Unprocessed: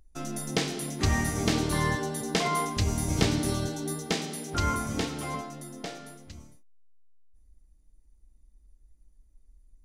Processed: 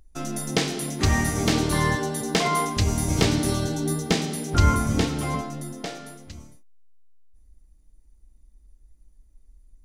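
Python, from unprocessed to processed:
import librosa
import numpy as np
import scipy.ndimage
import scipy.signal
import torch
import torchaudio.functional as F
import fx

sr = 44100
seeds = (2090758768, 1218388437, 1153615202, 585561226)

y = np.minimum(x, 2.0 * 10.0 ** (-15.5 / 20.0) - x)
y = fx.low_shelf(y, sr, hz=200.0, db=8.5, at=(3.7, 5.73))
y = y * librosa.db_to_amplitude(4.5)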